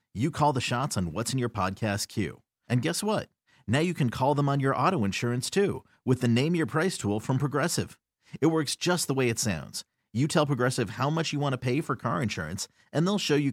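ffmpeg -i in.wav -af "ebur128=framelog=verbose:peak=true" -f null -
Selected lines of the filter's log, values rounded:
Integrated loudness:
  I:         -27.7 LUFS
  Threshold: -38.0 LUFS
Loudness range:
  LRA:         2.4 LU
  Threshold: -47.9 LUFS
  LRA low:   -29.0 LUFS
  LRA high:  -26.6 LUFS
True peak:
  Peak:      -10.6 dBFS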